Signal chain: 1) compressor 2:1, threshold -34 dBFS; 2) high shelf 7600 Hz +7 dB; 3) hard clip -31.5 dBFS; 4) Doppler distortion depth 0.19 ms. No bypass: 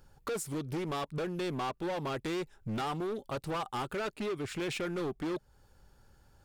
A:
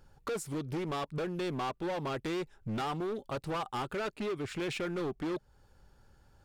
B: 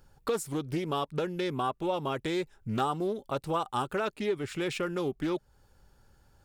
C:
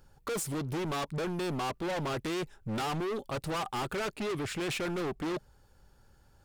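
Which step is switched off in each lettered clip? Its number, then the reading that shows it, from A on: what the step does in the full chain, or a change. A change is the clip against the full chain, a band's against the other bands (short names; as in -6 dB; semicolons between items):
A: 2, 8 kHz band -3.0 dB; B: 3, distortion -8 dB; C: 1, mean gain reduction 7.0 dB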